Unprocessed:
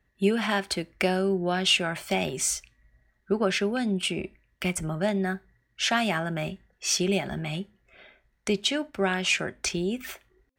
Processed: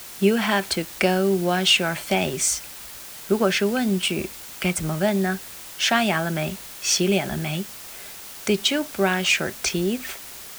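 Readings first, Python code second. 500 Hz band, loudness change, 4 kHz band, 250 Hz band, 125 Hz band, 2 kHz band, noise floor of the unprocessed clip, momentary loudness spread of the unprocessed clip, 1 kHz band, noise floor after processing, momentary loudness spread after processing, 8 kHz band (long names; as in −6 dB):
+4.5 dB, +5.0 dB, +5.0 dB, +4.5 dB, +4.5 dB, +4.5 dB, −72 dBFS, 11 LU, +4.5 dB, −39 dBFS, 15 LU, +5.0 dB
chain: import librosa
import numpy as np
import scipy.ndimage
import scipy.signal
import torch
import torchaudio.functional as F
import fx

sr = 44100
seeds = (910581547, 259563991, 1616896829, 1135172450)

p1 = scipy.signal.sosfilt(scipy.signal.butter(2, 42.0, 'highpass', fs=sr, output='sos'), x)
p2 = fx.quant_dither(p1, sr, seeds[0], bits=6, dither='triangular')
y = p1 + F.gain(torch.from_numpy(p2), -3.0).numpy()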